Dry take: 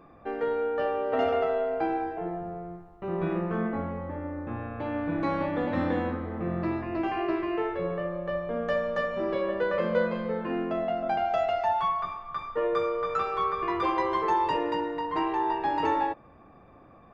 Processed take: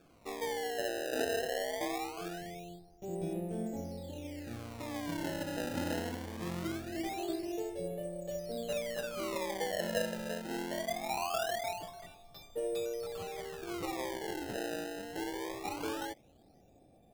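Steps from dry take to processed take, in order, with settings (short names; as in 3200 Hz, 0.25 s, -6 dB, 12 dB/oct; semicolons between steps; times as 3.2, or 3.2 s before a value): EQ curve 780 Hz 0 dB, 1100 Hz -27 dB, 3900 Hz +10 dB; decimation with a swept rate 22×, swing 160% 0.22 Hz; gain -8 dB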